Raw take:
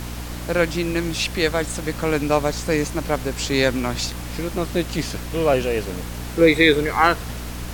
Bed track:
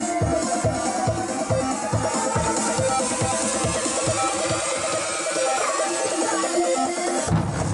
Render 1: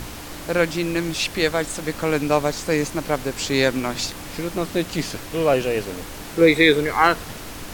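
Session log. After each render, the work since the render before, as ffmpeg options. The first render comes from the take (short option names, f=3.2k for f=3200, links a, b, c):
-af "bandreject=f=60:t=h:w=4,bandreject=f=120:t=h:w=4,bandreject=f=180:t=h:w=4,bandreject=f=240:t=h:w=4"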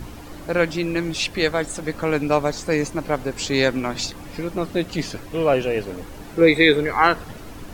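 -af "afftdn=nr=10:nf=-36"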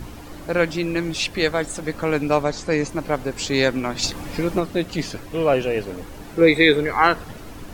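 -filter_complex "[0:a]asettb=1/sr,asplit=3[a][b][c];[a]atrim=end=2.434[d];[b]atrim=start=2.43:end=2.89,asetpts=PTS-STARTPTS,afade=t=in:d=0.004:c=qsin,afade=t=out:st=0.456:d=0.004:c=qsin,lowpass=7.6k[e];[c]atrim=start=2.886[f];[d][e]acrossfade=d=0.004:c1=hsin:c2=qsin[g];[g][f]acrossfade=d=0.004:c1=qsin:c2=hsin,asplit=3[h][i][j];[h]afade=t=out:st=4.02:d=0.02[k];[i]acontrast=26,afade=t=in:st=4.02:d=0.02,afade=t=out:st=4.59:d=0.02[l];[j]afade=t=in:st=4.59:d=0.02[m];[k][l][m]amix=inputs=3:normalize=0"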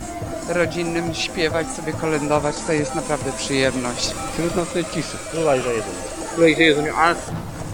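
-filter_complex "[1:a]volume=-7dB[a];[0:a][a]amix=inputs=2:normalize=0"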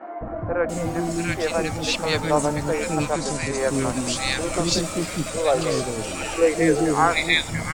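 -filter_complex "[0:a]acrossover=split=380|1600[a][b][c];[a]adelay=210[d];[c]adelay=690[e];[d][b][e]amix=inputs=3:normalize=0"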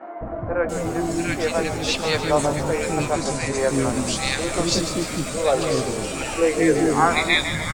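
-filter_complex "[0:a]asplit=2[a][b];[b]adelay=15,volume=-11dB[c];[a][c]amix=inputs=2:normalize=0,asplit=2[d][e];[e]asplit=7[f][g][h][i][j][k][l];[f]adelay=148,afreqshift=-47,volume=-10dB[m];[g]adelay=296,afreqshift=-94,volume=-14.9dB[n];[h]adelay=444,afreqshift=-141,volume=-19.8dB[o];[i]adelay=592,afreqshift=-188,volume=-24.6dB[p];[j]adelay=740,afreqshift=-235,volume=-29.5dB[q];[k]adelay=888,afreqshift=-282,volume=-34.4dB[r];[l]adelay=1036,afreqshift=-329,volume=-39.3dB[s];[m][n][o][p][q][r][s]amix=inputs=7:normalize=0[t];[d][t]amix=inputs=2:normalize=0"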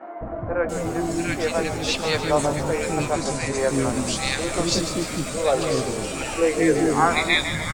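-af "volume=-1dB"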